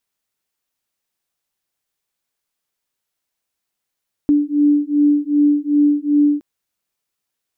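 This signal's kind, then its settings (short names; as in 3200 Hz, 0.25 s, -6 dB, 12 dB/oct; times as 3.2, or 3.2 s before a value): beating tones 291 Hz, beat 2.6 Hz, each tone -15 dBFS 2.12 s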